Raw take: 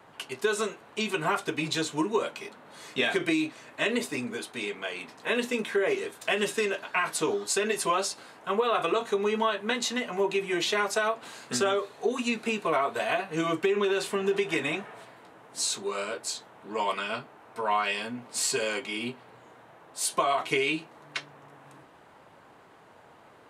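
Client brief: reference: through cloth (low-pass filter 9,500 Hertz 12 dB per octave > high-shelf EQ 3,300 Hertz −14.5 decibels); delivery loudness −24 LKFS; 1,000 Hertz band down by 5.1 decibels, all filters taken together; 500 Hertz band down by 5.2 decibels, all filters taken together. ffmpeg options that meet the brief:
ffmpeg -i in.wav -af "lowpass=9500,equalizer=frequency=500:width_type=o:gain=-6,equalizer=frequency=1000:width_type=o:gain=-3,highshelf=frequency=3300:gain=-14.5,volume=10dB" out.wav

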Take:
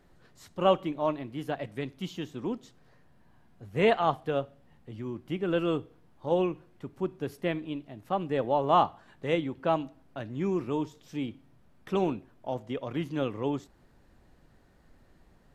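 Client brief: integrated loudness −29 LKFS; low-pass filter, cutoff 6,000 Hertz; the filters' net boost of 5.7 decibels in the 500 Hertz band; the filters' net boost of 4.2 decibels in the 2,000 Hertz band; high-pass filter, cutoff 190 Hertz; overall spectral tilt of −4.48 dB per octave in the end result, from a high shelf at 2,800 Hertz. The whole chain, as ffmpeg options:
ffmpeg -i in.wav -af "highpass=190,lowpass=6000,equalizer=frequency=500:width_type=o:gain=7,equalizer=frequency=2000:width_type=o:gain=7.5,highshelf=frequency=2800:gain=-6.5,volume=-2dB" out.wav

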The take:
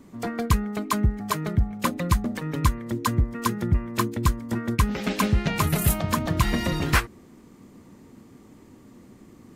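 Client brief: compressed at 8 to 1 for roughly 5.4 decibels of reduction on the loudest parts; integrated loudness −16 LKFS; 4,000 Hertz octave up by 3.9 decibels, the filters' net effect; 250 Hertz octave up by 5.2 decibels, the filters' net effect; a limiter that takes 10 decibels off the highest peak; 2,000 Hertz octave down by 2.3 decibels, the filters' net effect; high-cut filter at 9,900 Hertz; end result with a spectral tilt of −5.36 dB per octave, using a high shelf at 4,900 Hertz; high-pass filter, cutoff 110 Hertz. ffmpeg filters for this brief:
ffmpeg -i in.wav -af "highpass=110,lowpass=9900,equalizer=frequency=250:width_type=o:gain=7,equalizer=frequency=2000:width_type=o:gain=-5,equalizer=frequency=4000:width_type=o:gain=3,highshelf=frequency=4900:gain=7.5,acompressor=threshold=-22dB:ratio=8,volume=14dB,alimiter=limit=-6.5dB:level=0:latency=1" out.wav

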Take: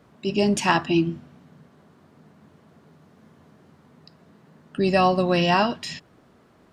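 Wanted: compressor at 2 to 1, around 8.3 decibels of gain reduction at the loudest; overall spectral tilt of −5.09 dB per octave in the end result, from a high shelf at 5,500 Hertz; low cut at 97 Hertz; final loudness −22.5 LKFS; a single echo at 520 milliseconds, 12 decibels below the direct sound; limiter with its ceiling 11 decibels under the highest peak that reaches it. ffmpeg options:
ffmpeg -i in.wav -af "highpass=97,highshelf=frequency=5500:gain=-4,acompressor=threshold=-30dB:ratio=2,alimiter=limit=-22.5dB:level=0:latency=1,aecho=1:1:520:0.251,volume=11dB" out.wav

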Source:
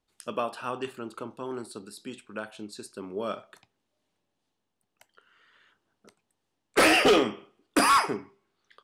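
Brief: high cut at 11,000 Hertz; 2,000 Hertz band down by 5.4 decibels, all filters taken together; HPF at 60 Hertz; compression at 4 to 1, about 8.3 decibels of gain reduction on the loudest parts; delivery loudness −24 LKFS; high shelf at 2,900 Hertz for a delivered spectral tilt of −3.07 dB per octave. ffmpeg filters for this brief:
ffmpeg -i in.wav -af "highpass=60,lowpass=11000,equalizer=frequency=2000:width_type=o:gain=-3.5,highshelf=frequency=2900:gain=-8.5,acompressor=threshold=-28dB:ratio=4,volume=11.5dB" out.wav

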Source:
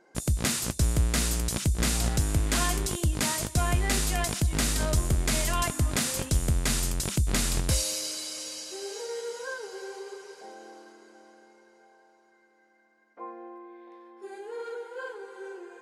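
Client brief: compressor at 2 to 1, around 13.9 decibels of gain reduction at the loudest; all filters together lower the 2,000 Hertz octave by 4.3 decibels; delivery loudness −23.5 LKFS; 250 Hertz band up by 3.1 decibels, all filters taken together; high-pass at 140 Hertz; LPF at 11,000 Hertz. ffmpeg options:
ffmpeg -i in.wav -af "highpass=140,lowpass=11000,equalizer=frequency=250:width_type=o:gain=5,equalizer=frequency=2000:width_type=o:gain=-5.5,acompressor=threshold=-50dB:ratio=2,volume=19.5dB" out.wav

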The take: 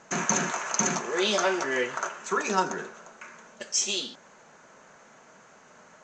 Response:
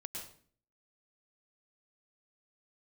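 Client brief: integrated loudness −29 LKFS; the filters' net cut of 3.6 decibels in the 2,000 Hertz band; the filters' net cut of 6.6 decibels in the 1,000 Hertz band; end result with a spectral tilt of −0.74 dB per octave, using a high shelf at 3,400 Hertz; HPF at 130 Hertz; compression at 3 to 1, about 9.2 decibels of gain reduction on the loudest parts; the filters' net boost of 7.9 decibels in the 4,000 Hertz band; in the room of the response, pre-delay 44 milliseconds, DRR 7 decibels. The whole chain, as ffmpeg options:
-filter_complex "[0:a]highpass=130,equalizer=frequency=1000:width_type=o:gain=-8,equalizer=frequency=2000:width_type=o:gain=-6,highshelf=frequency=3400:gain=5.5,equalizer=frequency=4000:width_type=o:gain=8.5,acompressor=threshold=-27dB:ratio=3,asplit=2[link_01][link_02];[1:a]atrim=start_sample=2205,adelay=44[link_03];[link_02][link_03]afir=irnorm=-1:irlink=0,volume=-5dB[link_04];[link_01][link_04]amix=inputs=2:normalize=0,volume=-0.5dB"

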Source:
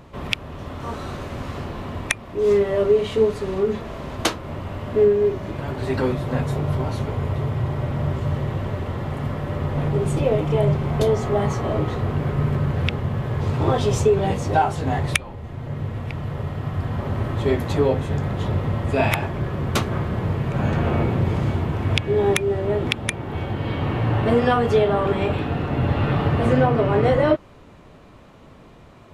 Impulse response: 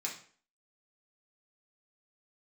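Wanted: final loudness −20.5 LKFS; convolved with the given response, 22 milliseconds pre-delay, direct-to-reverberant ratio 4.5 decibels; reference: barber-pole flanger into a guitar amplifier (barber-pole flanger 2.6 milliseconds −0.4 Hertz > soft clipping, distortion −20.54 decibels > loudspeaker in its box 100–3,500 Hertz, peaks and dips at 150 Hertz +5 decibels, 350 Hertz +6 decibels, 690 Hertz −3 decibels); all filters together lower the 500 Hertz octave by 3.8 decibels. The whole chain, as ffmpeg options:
-filter_complex "[0:a]equalizer=frequency=500:width_type=o:gain=-7,asplit=2[link_01][link_02];[1:a]atrim=start_sample=2205,adelay=22[link_03];[link_02][link_03]afir=irnorm=-1:irlink=0,volume=-6dB[link_04];[link_01][link_04]amix=inputs=2:normalize=0,asplit=2[link_05][link_06];[link_06]adelay=2.6,afreqshift=-0.4[link_07];[link_05][link_07]amix=inputs=2:normalize=1,asoftclip=threshold=-14dB,highpass=100,equalizer=frequency=150:width_type=q:width=4:gain=5,equalizer=frequency=350:width_type=q:width=4:gain=6,equalizer=frequency=690:width_type=q:width=4:gain=-3,lowpass=frequency=3500:width=0.5412,lowpass=frequency=3500:width=1.3066,volume=5.5dB"

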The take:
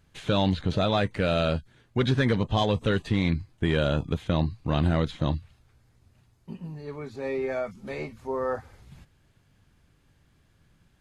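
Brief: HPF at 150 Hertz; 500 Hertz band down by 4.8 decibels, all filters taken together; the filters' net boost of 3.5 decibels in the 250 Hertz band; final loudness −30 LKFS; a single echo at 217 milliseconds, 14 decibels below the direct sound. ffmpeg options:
ffmpeg -i in.wav -af "highpass=150,equalizer=frequency=250:width_type=o:gain=8,equalizer=frequency=500:width_type=o:gain=-8.5,aecho=1:1:217:0.2,volume=-2.5dB" out.wav

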